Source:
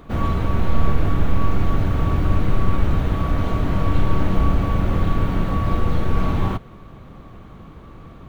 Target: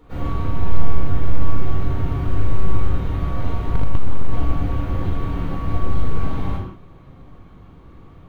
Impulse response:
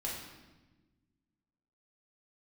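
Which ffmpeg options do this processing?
-filter_complex "[1:a]atrim=start_sample=2205,afade=t=out:st=0.27:d=0.01,atrim=end_sample=12348,asetrate=48510,aresample=44100[s0];[0:a][s0]afir=irnorm=-1:irlink=0,asettb=1/sr,asplit=3[s1][s2][s3];[s1]atrim=end=3.744[s4];[s2]atrim=start=3.74:end=4.34,asetpts=PTS-STARTPTS,afade=t=in:d=0.004:c=qsin,afade=t=out:st=0.596:d=0.004:c=qsin,acontrast=80[s5];[s3]atrim=start=4.336[s6];[s4][s5]acrossfade=d=0.004:c1=hsin:c2=qsin[s7];[s7][s6]acrossfade=d=0.004:c1=qsin:c2=hsin,volume=0.473"

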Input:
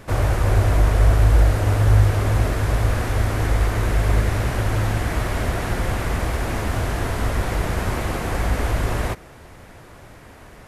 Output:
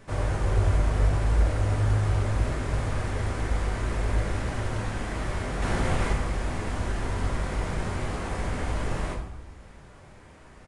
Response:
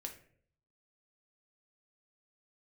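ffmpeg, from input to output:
-filter_complex "[0:a]asettb=1/sr,asplit=3[s0][s1][s2];[s0]atrim=end=5.624[s3];[s1]atrim=start=5.62:end=6.13,asetpts=PTS-STARTPTS,afade=t=in:d=0.004:c=qsin,afade=t=out:st=0.506:d=0.004:c=qsin,acontrast=31[s4];[s2]atrim=start=6.126[s5];[s3][s4]acrossfade=d=0.004:c1=hsin:c2=qsin[s6];[s6][s5]acrossfade=d=0.004:c1=qsin:c2=hsin[s7];[1:a]atrim=start_sample=2205,asetrate=23373,aresample=44100[s8];[s7][s8]afir=irnorm=-1:irlink=0,aresample=22050,aresample=44100,volume=0.398"

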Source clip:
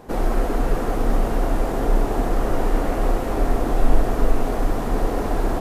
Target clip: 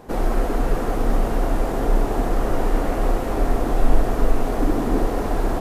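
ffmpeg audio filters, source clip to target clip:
-filter_complex "[0:a]asettb=1/sr,asplit=3[s0][s1][s2];[s0]atrim=end=4.584[s3];[s1]atrim=start=4.58:end=5.04,asetpts=PTS-STARTPTS,afade=t=in:d=0.004:c=qsin,afade=t=out:st=0.456:d=0.004:c=qsin,equalizer=f=300:t=o:w=0.77:g=8[s4];[s2]atrim=start=5.036[s5];[s3][s4]acrossfade=d=0.004:c1=hsin:c2=qsin[s6];[s6][s5]acrossfade=d=0.004:c1=qsin:c2=hsin"

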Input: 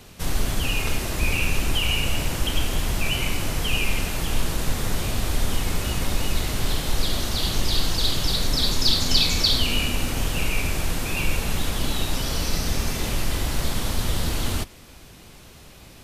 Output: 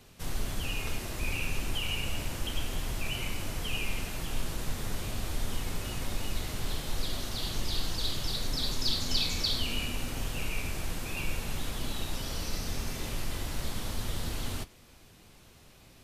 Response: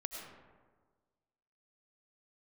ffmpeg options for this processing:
-af "flanger=delay=7.4:depth=2.4:regen=-69:speed=0.69:shape=triangular,volume=0.531"

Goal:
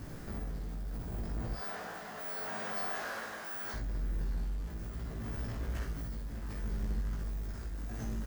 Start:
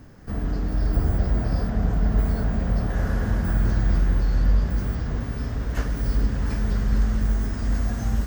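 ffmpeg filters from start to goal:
-filter_complex "[0:a]asettb=1/sr,asplit=3[s0][s1][s2];[s0]atrim=end=1.534[s3];[s1]atrim=start=1.53:end=3.74,asetpts=PTS-STARTPTS,afade=t=in:d=0.004:c=qsin,afade=t=out:st=2.206:d=0.004:c=qsin,highpass=760[s4];[s2]atrim=start=3.736[s5];[s3][s4]acrossfade=d=0.004:c1=hsin:c2=qsin[s6];[s6][s5]acrossfade=d=0.004:c1=qsin:c2=hsin,alimiter=limit=0.0891:level=0:latency=1:release=206,acompressor=threshold=0.0224:ratio=2.5,asoftclip=type=tanh:threshold=0.015,tremolo=f=0.72:d=0.48,acrusher=bits=9:mix=0:aa=0.000001,asplit=2[s7][s8];[s8]adelay=18,volume=0.75[s9];[s7][s9]amix=inputs=2:normalize=0,aecho=1:1:49|62:0.422|0.355,volume=1.12"

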